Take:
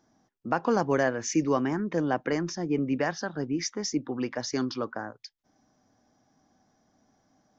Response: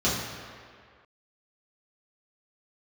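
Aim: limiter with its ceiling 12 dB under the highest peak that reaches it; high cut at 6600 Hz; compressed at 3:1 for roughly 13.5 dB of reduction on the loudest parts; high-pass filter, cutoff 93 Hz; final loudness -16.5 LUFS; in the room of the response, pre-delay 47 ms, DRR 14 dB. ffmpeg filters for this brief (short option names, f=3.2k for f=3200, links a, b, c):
-filter_complex "[0:a]highpass=93,lowpass=6.6k,acompressor=threshold=-39dB:ratio=3,alimiter=level_in=9.5dB:limit=-24dB:level=0:latency=1,volume=-9.5dB,asplit=2[a][b];[1:a]atrim=start_sample=2205,adelay=47[c];[b][c]afir=irnorm=-1:irlink=0,volume=-28dB[d];[a][d]amix=inputs=2:normalize=0,volume=26.5dB"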